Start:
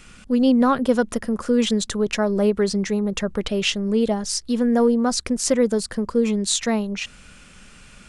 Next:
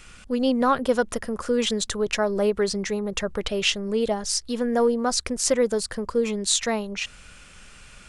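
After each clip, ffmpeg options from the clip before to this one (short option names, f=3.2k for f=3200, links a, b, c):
-af "equalizer=f=220:w=1.2:g=-7.5"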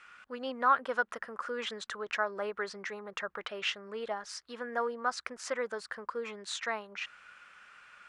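-af "bandpass=f=1.4k:t=q:w=1.9:csg=0"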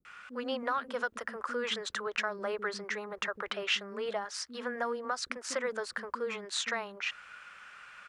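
-filter_complex "[0:a]acrossover=split=300[a][b];[b]adelay=50[c];[a][c]amix=inputs=2:normalize=0,acrossover=split=350|3000[d][e][f];[e]acompressor=threshold=-36dB:ratio=6[g];[d][g][f]amix=inputs=3:normalize=0,volume=4.5dB"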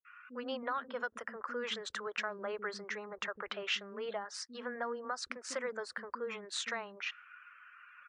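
-af "afftdn=nr=28:nf=-53,volume=-4dB" -ar 24000 -c:a libmp3lame -b:a 112k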